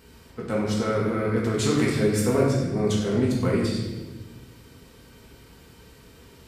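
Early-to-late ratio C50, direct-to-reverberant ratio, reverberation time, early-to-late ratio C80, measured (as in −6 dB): 1.5 dB, −5.5 dB, 1.2 s, 4.0 dB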